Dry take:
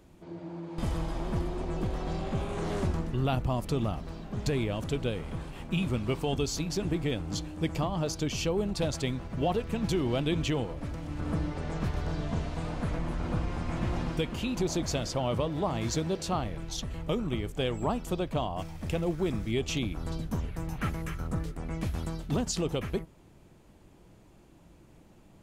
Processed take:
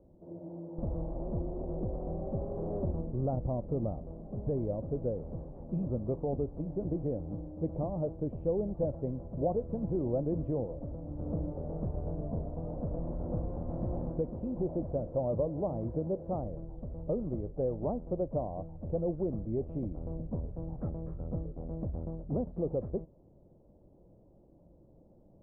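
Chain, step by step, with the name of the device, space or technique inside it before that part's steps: under water (LPF 720 Hz 24 dB/oct; bell 550 Hz +8 dB 0.37 oct); 12.98–14.21 high shelf 2200 Hz +8 dB; gain -4 dB

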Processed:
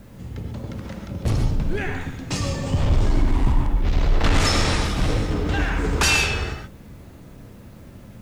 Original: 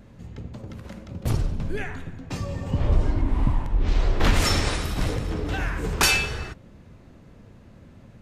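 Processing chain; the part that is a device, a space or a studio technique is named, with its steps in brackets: 2.01–3.52 high shelf 3400 Hz +11.5 dB; compact cassette (soft clip -18.5 dBFS, distortion -12 dB; LPF 8800 Hz 12 dB/oct; wow and flutter; white noise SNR 40 dB); non-linear reverb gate 0.16 s rising, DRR 4.5 dB; gain +4.5 dB

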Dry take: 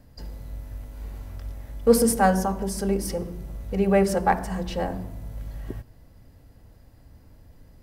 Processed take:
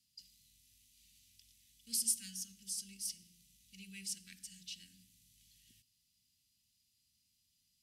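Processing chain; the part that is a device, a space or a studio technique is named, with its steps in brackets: Chebyshev band-stop 210–2800 Hz, order 3; piezo pickup straight into a mixer (LPF 7300 Hz 12 dB/oct; differentiator)

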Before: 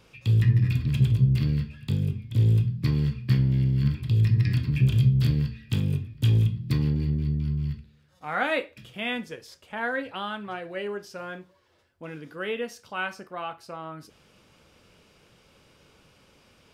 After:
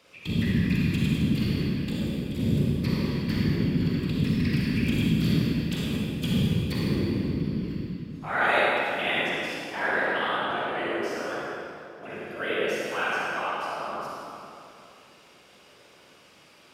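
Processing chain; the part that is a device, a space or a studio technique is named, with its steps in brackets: whispering ghost (whisperiser; HPF 440 Hz 6 dB/oct; reverb RT60 2.7 s, pre-delay 37 ms, DRR -5.5 dB)

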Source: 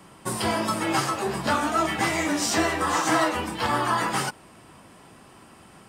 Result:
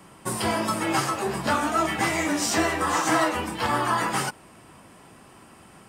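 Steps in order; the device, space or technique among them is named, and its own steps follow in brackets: exciter from parts (in parallel at -13.5 dB: HPF 2600 Hz 24 dB/oct + soft clip -21 dBFS, distortion -21 dB + HPF 2800 Hz)

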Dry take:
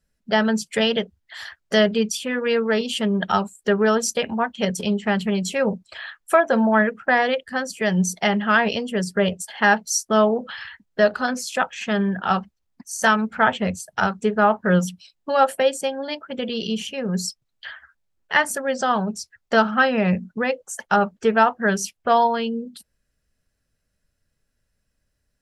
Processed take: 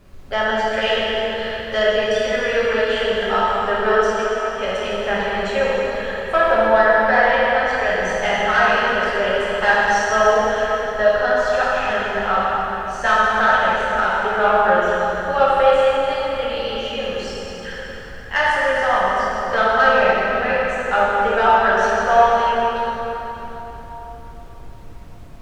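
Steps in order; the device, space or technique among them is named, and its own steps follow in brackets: aircraft cabin announcement (BPF 480–3000 Hz; soft clip -9.5 dBFS, distortion -18 dB; brown noise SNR 17 dB); 4.05–4.57 passive tone stack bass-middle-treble 5-5-5; plate-style reverb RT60 4 s, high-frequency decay 0.75×, DRR -8 dB; gain -1.5 dB

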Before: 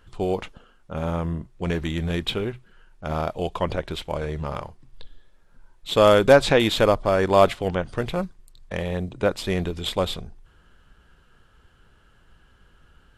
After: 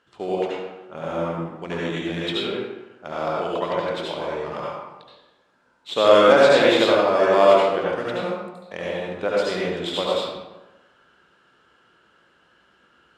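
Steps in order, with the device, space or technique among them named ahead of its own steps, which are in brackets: supermarket ceiling speaker (BPF 270–7000 Hz; reverb RT60 1.1 s, pre-delay 68 ms, DRR -5.5 dB); gain -3.5 dB

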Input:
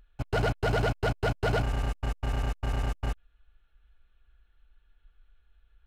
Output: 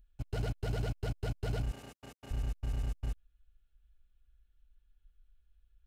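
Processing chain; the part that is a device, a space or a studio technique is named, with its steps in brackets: 1.71–2.31 HPF 260 Hz 12 dB/oct; smiley-face EQ (low shelf 160 Hz +4.5 dB; bell 1100 Hz -9 dB 2.3 oct; high shelf 7600 Hz +4.5 dB); gain -8.5 dB

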